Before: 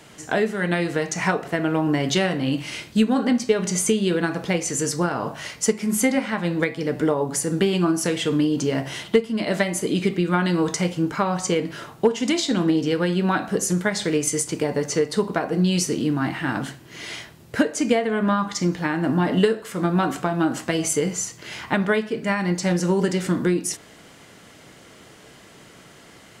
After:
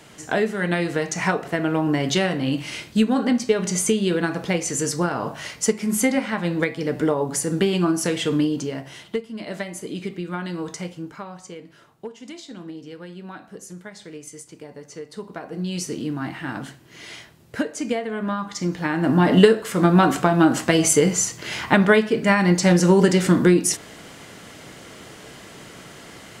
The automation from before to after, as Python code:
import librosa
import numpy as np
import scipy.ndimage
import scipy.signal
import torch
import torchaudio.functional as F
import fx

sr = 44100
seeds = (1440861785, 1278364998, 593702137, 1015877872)

y = fx.gain(x, sr, db=fx.line((8.43, 0.0), (8.83, -8.5), (10.83, -8.5), (11.47, -16.5), (14.86, -16.5), (15.91, -5.0), (18.46, -5.0), (19.34, 5.5)))